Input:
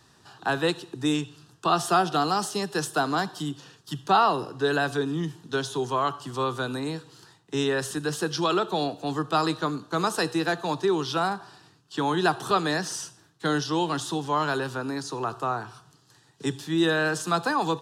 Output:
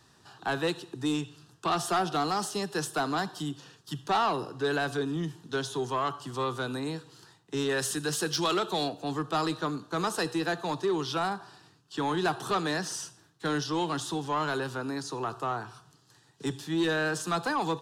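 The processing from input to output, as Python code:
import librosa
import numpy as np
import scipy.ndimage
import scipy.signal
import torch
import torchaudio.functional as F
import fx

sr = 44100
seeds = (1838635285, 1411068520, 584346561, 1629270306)

y = fx.high_shelf(x, sr, hz=2600.0, db=7.5, at=(7.69, 8.89))
y = 10.0 ** (-18.0 / 20.0) * np.tanh(y / 10.0 ** (-18.0 / 20.0))
y = F.gain(torch.from_numpy(y), -2.5).numpy()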